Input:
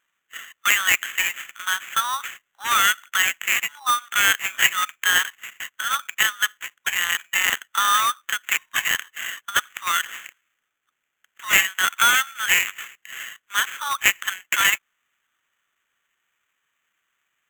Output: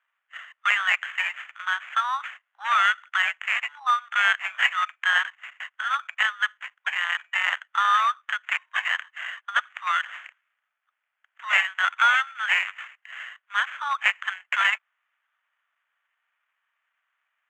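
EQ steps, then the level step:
Butterworth high-pass 620 Hz 36 dB per octave
low-pass filter 2,200 Hz 12 dB per octave
0.0 dB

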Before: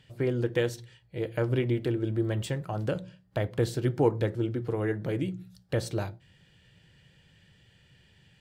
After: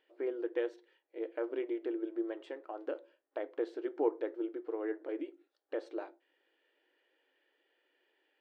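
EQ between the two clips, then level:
linear-phase brick-wall high-pass 280 Hz
head-to-tape spacing loss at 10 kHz 25 dB
parametric band 7,600 Hz −7.5 dB 2 octaves
−5.0 dB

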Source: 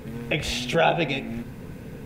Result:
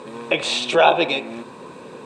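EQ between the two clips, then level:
loudspeaker in its box 270–8,900 Hz, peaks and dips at 360 Hz +7 dB, 560 Hz +7 dB, 1,100 Hz +7 dB, 2,400 Hz +5 dB, 3,900 Hz +9 dB, 8,200 Hz +9 dB
parametric band 1,000 Hz +10 dB 0.46 octaves
notch filter 2,100 Hz, Q 8.3
+1.0 dB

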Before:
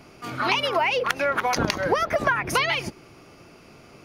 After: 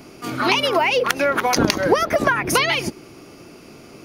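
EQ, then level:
parametric band 300 Hz +7.5 dB 1.5 octaves
parametric band 5,600 Hz +3 dB 2.1 octaves
high-shelf EQ 9,300 Hz +10.5 dB
+2.0 dB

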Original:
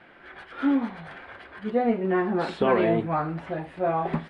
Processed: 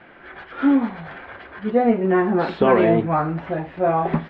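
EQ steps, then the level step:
high-frequency loss of the air 190 metres
+6.5 dB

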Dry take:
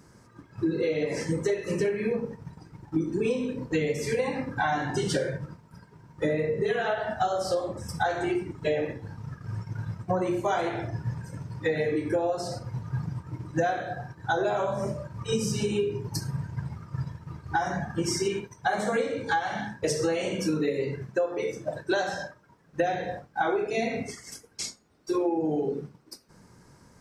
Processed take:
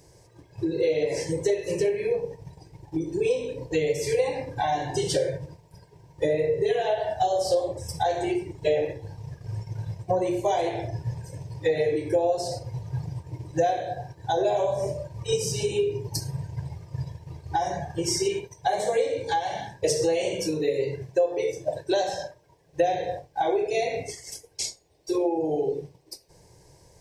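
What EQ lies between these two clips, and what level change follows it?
phaser with its sweep stopped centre 550 Hz, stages 4
+4.5 dB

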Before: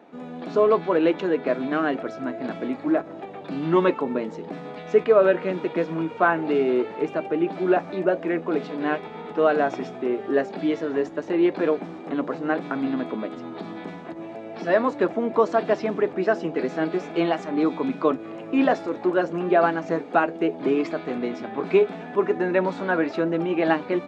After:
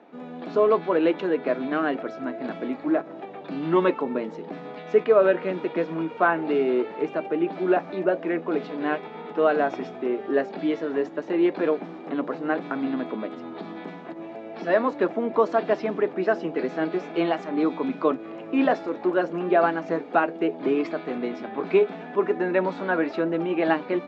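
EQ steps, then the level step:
band-pass filter 160–5,000 Hz
−1.0 dB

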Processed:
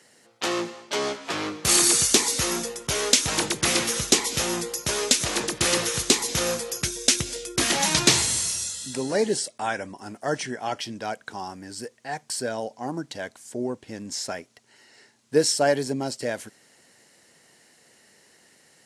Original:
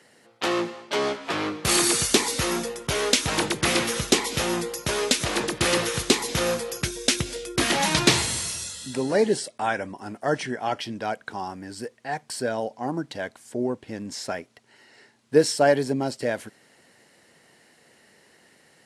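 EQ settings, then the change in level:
high-shelf EQ 4,900 Hz +5 dB
parametric band 6,500 Hz +5 dB 0.86 octaves
−2.5 dB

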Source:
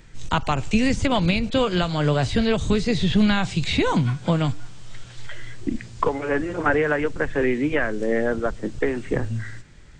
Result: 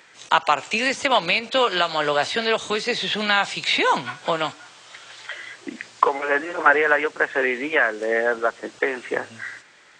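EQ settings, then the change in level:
high-pass filter 680 Hz 12 dB per octave
high-shelf EQ 5,500 Hz −8 dB
+7.5 dB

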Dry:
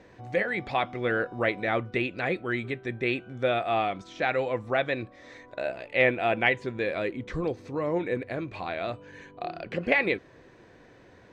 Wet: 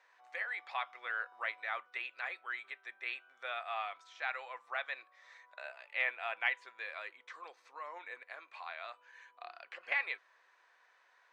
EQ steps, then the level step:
four-pole ladder high-pass 860 Hz, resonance 35%
−2.5 dB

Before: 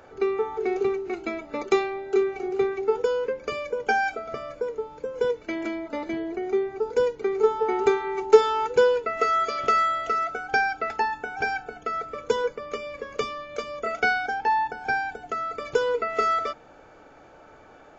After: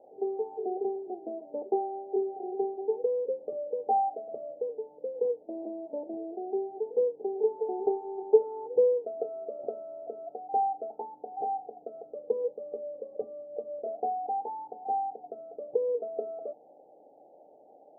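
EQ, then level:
high-pass filter 440 Hz 12 dB per octave
Chebyshev low-pass with heavy ripple 810 Hz, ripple 3 dB
0.0 dB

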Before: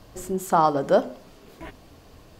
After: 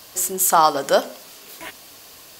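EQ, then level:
spectral tilt +4.5 dB per octave
+5.0 dB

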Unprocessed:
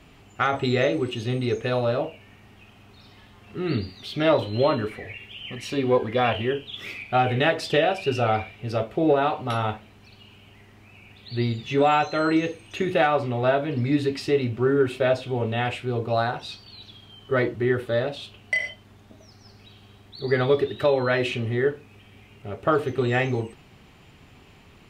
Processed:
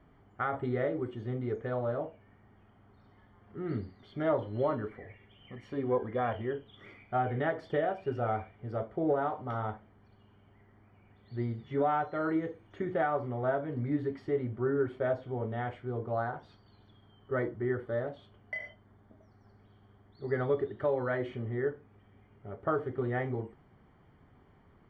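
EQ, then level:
Savitzky-Golay smoothing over 41 samples
−9.0 dB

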